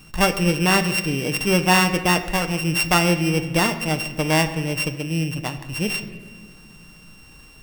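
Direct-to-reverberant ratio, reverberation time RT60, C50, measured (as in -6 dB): 7.5 dB, 1.6 s, 11.5 dB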